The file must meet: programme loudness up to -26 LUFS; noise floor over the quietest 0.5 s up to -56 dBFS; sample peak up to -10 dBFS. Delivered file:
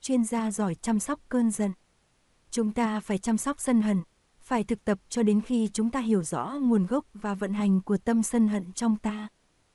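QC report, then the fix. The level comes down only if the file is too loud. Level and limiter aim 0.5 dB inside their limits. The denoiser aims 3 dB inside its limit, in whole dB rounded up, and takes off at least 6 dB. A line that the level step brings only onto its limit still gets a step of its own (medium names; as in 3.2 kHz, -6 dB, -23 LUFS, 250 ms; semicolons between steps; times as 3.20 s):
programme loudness -27.5 LUFS: pass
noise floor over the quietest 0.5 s -67 dBFS: pass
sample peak -12.5 dBFS: pass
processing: none needed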